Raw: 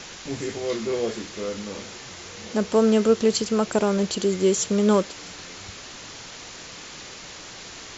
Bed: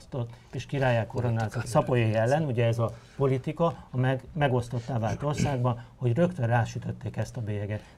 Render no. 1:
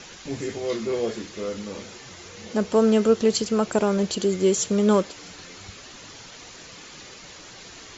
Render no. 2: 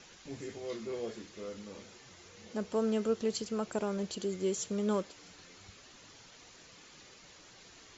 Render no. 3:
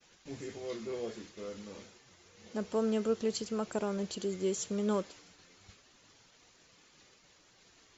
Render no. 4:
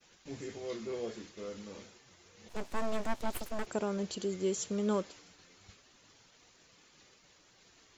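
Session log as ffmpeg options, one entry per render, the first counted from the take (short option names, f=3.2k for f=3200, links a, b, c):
-af "afftdn=nr=6:nf=-41"
-af "volume=-12.5dB"
-af "agate=range=-33dB:threshold=-49dB:ratio=3:detection=peak"
-filter_complex "[0:a]asplit=3[a][b][c];[a]afade=t=out:st=2.48:d=0.02[d];[b]aeval=exprs='abs(val(0))':c=same,afade=t=in:st=2.48:d=0.02,afade=t=out:st=3.65:d=0.02[e];[c]afade=t=in:st=3.65:d=0.02[f];[d][e][f]amix=inputs=3:normalize=0"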